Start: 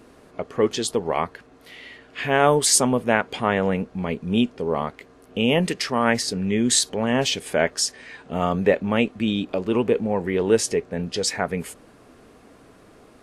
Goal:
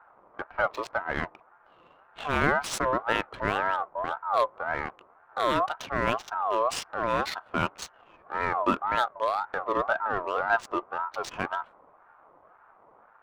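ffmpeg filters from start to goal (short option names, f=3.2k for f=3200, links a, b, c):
-af "adynamicsmooth=sensitivity=3:basefreq=590,bass=f=250:g=6,treble=f=4k:g=-7,aeval=exprs='val(0)*sin(2*PI*960*n/s+960*0.2/1.9*sin(2*PI*1.9*n/s))':c=same,volume=-5dB"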